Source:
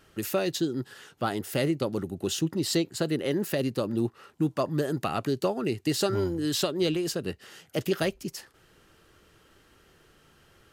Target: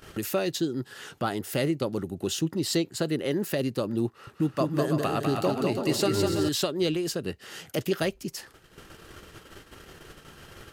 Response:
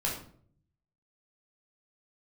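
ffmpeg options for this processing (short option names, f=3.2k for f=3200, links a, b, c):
-filter_complex "[0:a]agate=range=-45dB:threshold=-57dB:ratio=16:detection=peak,acompressor=mode=upward:threshold=-29dB:ratio=2.5,asettb=1/sr,asplit=3[a][b][c];[a]atrim=end=4.074[d];[b]atrim=start=4.07:end=6.49,asetpts=PTS-STARTPTS,afade=t=in:d=0.004:c=qsin,afade=t=out:st=2.416:d=0.004:c=qsin,aecho=1:1:200|330|414.5|469.4|505.1:0.631|0.398|0.251|0.158|0.1,atrim=end_sample=106722[e];[c]atrim=start=6.486[f];[d][e]acrossfade=d=0.004:c1=hsin:c2=qsin[g];[g][f]acrossfade=d=0.004:c1=qsin:c2=hsin"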